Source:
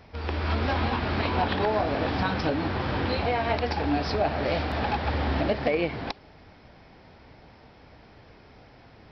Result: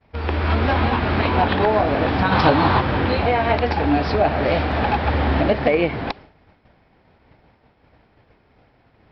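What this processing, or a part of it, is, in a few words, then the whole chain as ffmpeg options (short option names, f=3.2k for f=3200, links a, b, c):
hearing-loss simulation: -filter_complex "[0:a]asplit=3[a][b][c];[a]afade=t=out:st=2.31:d=0.02[d];[b]equalizer=f=125:t=o:w=1:g=5,equalizer=f=1k:t=o:w=1:g=11,equalizer=f=4k:t=o:w=1:g=9,afade=t=in:st=2.31:d=0.02,afade=t=out:st=2.79:d=0.02[e];[c]afade=t=in:st=2.79:d=0.02[f];[d][e][f]amix=inputs=3:normalize=0,lowpass=3.5k,agate=range=-33dB:threshold=-42dB:ratio=3:detection=peak,volume=7.5dB"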